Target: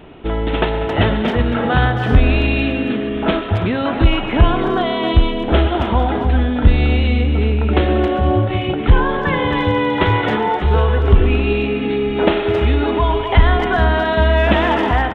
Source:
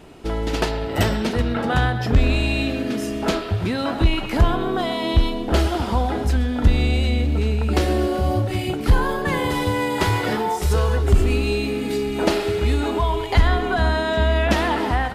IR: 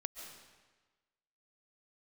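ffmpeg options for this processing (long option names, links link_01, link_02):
-filter_complex "[0:a]aresample=8000,aresample=44100,asplit=2[link_01][link_02];[link_02]adelay=270,highpass=300,lowpass=3400,asoftclip=type=hard:threshold=-16dB,volume=-7dB[link_03];[link_01][link_03]amix=inputs=2:normalize=0,volume=4.5dB"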